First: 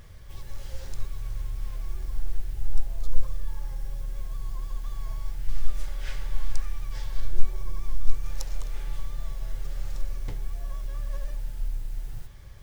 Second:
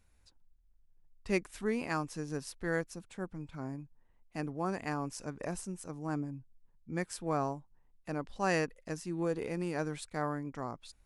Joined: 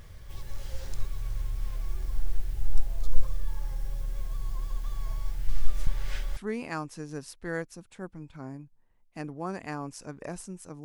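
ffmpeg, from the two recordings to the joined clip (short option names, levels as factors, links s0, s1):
-filter_complex "[0:a]apad=whole_dur=10.84,atrim=end=10.84,asplit=2[s0][s1];[s0]atrim=end=5.872[s2];[s1]atrim=start=5.868:end=6.372,asetpts=PTS-STARTPTS,areverse[s3];[1:a]atrim=start=1.558:end=6.03[s4];[s2][s3]acrossfade=d=0.004:c1=hsin:c2=hsin[s5];[s5][s4]acrossfade=d=0.004:c1=hsin:c2=hsin"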